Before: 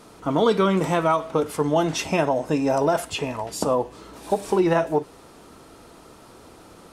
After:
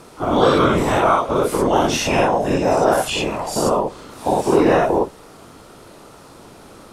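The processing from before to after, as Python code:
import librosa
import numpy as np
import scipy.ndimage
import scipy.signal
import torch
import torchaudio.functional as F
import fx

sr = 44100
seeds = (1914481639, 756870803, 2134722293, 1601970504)

y = fx.spec_dilate(x, sr, span_ms=120)
y = fx.whisperise(y, sr, seeds[0])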